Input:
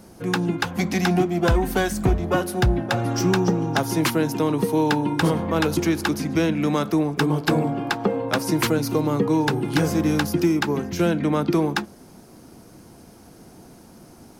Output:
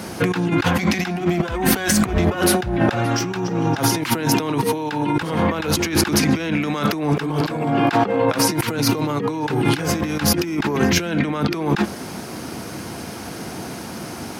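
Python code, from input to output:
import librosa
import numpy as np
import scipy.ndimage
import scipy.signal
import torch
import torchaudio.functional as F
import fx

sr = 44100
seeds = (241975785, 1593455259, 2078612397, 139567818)

y = scipy.signal.sosfilt(scipy.signal.butter(4, 67.0, 'highpass', fs=sr, output='sos'), x)
y = fx.peak_eq(y, sr, hz=2300.0, db=8.5, octaves=2.5)
y = fx.over_compress(y, sr, threshold_db=-28.0, ratio=-1.0)
y = y * librosa.db_to_amplitude(7.0)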